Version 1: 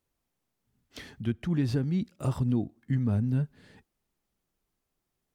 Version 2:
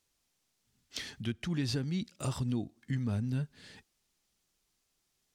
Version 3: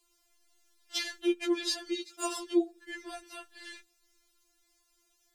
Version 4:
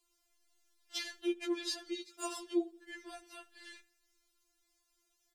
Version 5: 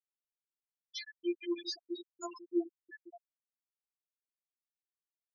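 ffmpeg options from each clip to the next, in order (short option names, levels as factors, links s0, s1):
-filter_complex "[0:a]equalizer=f=5500:t=o:w=2.8:g=13.5,asplit=2[s0][s1];[s1]acompressor=threshold=0.0158:ratio=6,volume=0.891[s2];[s0][s2]amix=inputs=2:normalize=0,volume=0.398"
-af "afftfilt=real='re*4*eq(mod(b,16),0)':imag='im*4*eq(mod(b,16),0)':win_size=2048:overlap=0.75,volume=2.82"
-filter_complex "[0:a]asplit=2[s0][s1];[s1]adelay=81,lowpass=f=4300:p=1,volume=0.0708,asplit=2[s2][s3];[s3]adelay=81,lowpass=f=4300:p=1,volume=0.53,asplit=2[s4][s5];[s5]adelay=81,lowpass=f=4300:p=1,volume=0.53,asplit=2[s6][s7];[s7]adelay=81,lowpass=f=4300:p=1,volume=0.53[s8];[s0][s2][s4][s6][s8]amix=inputs=5:normalize=0,volume=0.501"
-af "afftfilt=real='re*gte(hypot(re,im),0.0398)':imag='im*gte(hypot(re,im),0.0398)':win_size=1024:overlap=0.75,aresample=16000,aresample=44100"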